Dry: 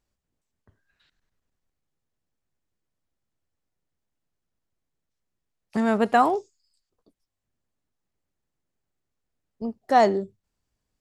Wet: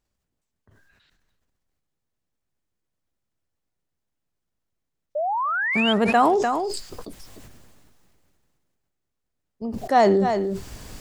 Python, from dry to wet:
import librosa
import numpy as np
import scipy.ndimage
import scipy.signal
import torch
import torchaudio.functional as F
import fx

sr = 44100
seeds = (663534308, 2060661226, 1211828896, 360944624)

y = fx.spec_paint(x, sr, seeds[0], shape='rise', start_s=5.15, length_s=0.78, low_hz=570.0, high_hz=3300.0, level_db=-24.0)
y = y + 10.0 ** (-23.5 / 20.0) * np.pad(y, (int(299 * sr / 1000.0), 0))[:len(y)]
y = fx.sustainer(y, sr, db_per_s=23.0)